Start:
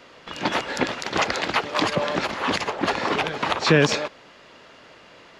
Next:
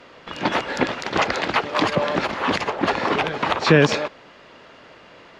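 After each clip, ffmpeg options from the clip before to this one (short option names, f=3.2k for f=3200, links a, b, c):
-af "aemphasis=mode=reproduction:type=cd,volume=2.5dB"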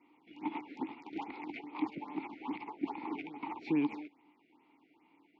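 -filter_complex "[0:a]asplit=3[a][b][c];[a]bandpass=f=300:t=q:w=8,volume=0dB[d];[b]bandpass=f=870:t=q:w=8,volume=-6dB[e];[c]bandpass=f=2.24k:t=q:w=8,volume=-9dB[f];[d][e][f]amix=inputs=3:normalize=0,afftfilt=real='re*(1-between(b*sr/1024,960*pow(7600/960,0.5+0.5*sin(2*PI*2.4*pts/sr))/1.41,960*pow(7600/960,0.5+0.5*sin(2*PI*2.4*pts/sr))*1.41))':imag='im*(1-between(b*sr/1024,960*pow(7600/960,0.5+0.5*sin(2*PI*2.4*pts/sr))/1.41,960*pow(7600/960,0.5+0.5*sin(2*PI*2.4*pts/sr))*1.41))':win_size=1024:overlap=0.75,volume=-7dB"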